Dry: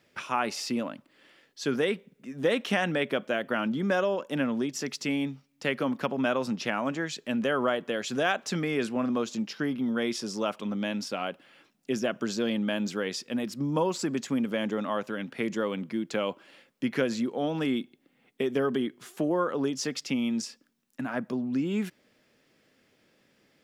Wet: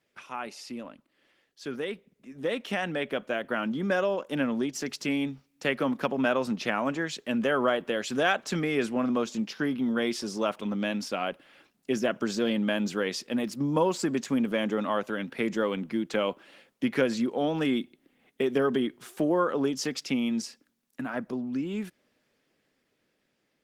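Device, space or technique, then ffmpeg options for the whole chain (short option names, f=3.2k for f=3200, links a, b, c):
video call: -af "highpass=f=120:p=1,dynaudnorm=f=910:g=7:m=11dB,volume=-7.5dB" -ar 48000 -c:a libopus -b:a 20k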